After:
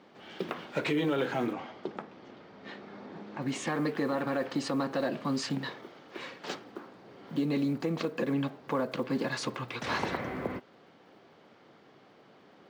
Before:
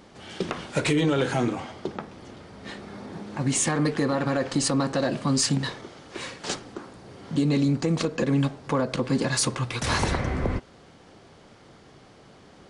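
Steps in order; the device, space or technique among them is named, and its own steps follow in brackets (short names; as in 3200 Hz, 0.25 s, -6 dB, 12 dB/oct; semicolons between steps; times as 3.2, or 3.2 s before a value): early digital voice recorder (BPF 200–3600 Hz; block floating point 7-bit); 1.53–3.42 LPF 7200 Hz 24 dB/oct; gain -5 dB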